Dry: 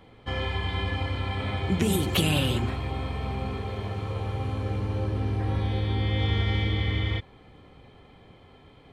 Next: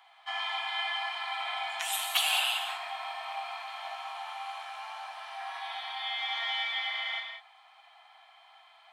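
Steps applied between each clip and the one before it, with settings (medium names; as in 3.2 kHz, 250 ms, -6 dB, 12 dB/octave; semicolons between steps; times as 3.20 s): Chebyshev high-pass 660 Hz, order 8; gated-style reverb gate 220 ms flat, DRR 2.5 dB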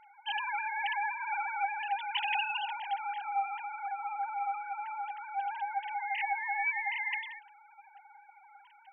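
formants replaced by sine waves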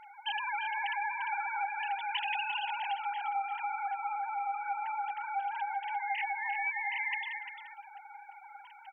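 compression 3:1, threshold -40 dBFS, peak gain reduction 10 dB; on a send: delay 347 ms -10 dB; on the sum: trim +6 dB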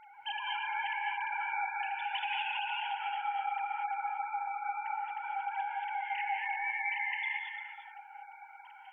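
gated-style reverb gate 260 ms rising, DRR 0 dB; trim -3.5 dB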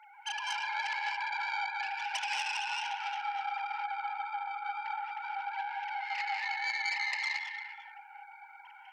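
tracing distortion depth 0.1 ms; high-pass 810 Hz 24 dB/octave; trim +1.5 dB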